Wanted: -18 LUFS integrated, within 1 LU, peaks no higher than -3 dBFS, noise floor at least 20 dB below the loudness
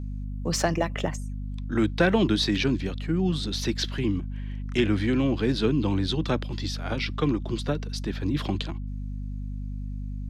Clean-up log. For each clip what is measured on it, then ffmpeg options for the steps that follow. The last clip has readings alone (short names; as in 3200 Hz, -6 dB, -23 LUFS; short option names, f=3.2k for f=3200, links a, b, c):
hum 50 Hz; harmonics up to 250 Hz; hum level -30 dBFS; loudness -27.5 LUFS; peak -8.5 dBFS; loudness target -18.0 LUFS
-> -af "bandreject=f=50:t=h:w=4,bandreject=f=100:t=h:w=4,bandreject=f=150:t=h:w=4,bandreject=f=200:t=h:w=4,bandreject=f=250:t=h:w=4"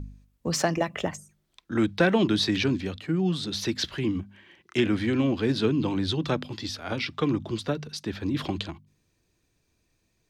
hum none; loudness -27.5 LUFS; peak -9.0 dBFS; loudness target -18.0 LUFS
-> -af "volume=9.5dB,alimiter=limit=-3dB:level=0:latency=1"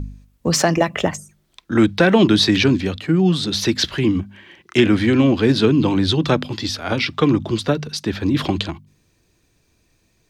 loudness -18.0 LUFS; peak -3.0 dBFS; noise floor -63 dBFS